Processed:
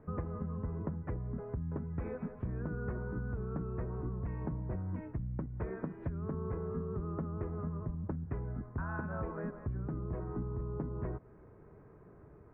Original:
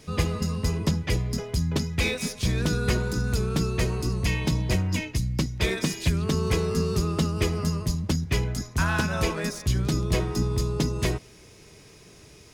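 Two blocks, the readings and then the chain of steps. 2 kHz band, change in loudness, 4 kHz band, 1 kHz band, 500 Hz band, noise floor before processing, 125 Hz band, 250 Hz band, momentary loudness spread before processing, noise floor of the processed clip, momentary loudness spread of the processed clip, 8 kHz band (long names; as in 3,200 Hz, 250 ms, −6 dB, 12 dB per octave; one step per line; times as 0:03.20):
−19.0 dB, −13.0 dB, below −40 dB, −12.0 dB, −11.5 dB, −50 dBFS, −12.0 dB, −12.0 dB, 3 LU, −57 dBFS, 3 LU, below −40 dB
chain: Butterworth low-pass 1,500 Hz 36 dB per octave
downward compressor, threshold −30 dBFS, peak gain reduction 12.5 dB
level −4.5 dB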